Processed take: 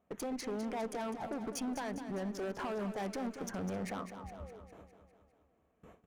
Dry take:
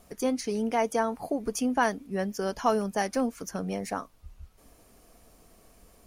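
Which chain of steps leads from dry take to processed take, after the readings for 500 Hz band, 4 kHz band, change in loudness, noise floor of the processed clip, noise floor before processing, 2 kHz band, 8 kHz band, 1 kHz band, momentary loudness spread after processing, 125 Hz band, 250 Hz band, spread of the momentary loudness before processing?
-10.0 dB, -8.5 dB, -10.0 dB, -74 dBFS, -59 dBFS, -11.0 dB, -9.5 dB, -12.0 dB, 11 LU, -5.0 dB, -8.0 dB, 7 LU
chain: local Wiener filter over 9 samples; gate with hold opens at -45 dBFS; high-pass 100 Hz 12 dB/octave; treble shelf 5.3 kHz -8 dB; compression 2:1, threshold -40 dBFS, peak gain reduction 11.5 dB; peak limiter -32 dBFS, peak gain reduction 9.5 dB; one-sided clip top -44.5 dBFS, bottom -37.5 dBFS; painted sound fall, 4.16–4.60 s, 400–1000 Hz -58 dBFS; on a send: feedback delay 203 ms, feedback 59%, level -10 dB; on the sum: trim +5.5 dB

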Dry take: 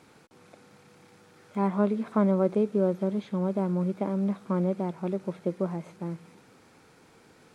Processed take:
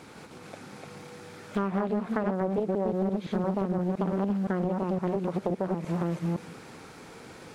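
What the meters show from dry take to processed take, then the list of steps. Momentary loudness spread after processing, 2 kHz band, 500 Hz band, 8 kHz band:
18 LU, +5.0 dB, -1.0 dB, no reading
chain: chunks repeated in reverse 172 ms, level -2 dB; compression 8:1, threshold -33 dBFS, peak gain reduction 16 dB; loudspeaker Doppler distortion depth 0.55 ms; trim +8.5 dB

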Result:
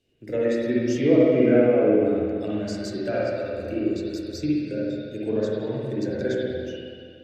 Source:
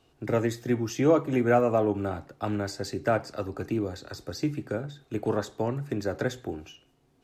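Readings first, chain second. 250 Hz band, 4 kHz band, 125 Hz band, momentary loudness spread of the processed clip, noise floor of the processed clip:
+6.0 dB, +2.0 dB, 0.0 dB, 12 LU, -44 dBFS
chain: spectral noise reduction 8 dB; de-hum 49.7 Hz, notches 3; low-pass that closes with the level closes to 2.1 kHz, closed at -21.5 dBFS; high-order bell 1 kHz -15.5 dB 1.2 oct; spring tank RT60 2.2 s, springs 47/60 ms, chirp 55 ms, DRR -7 dB

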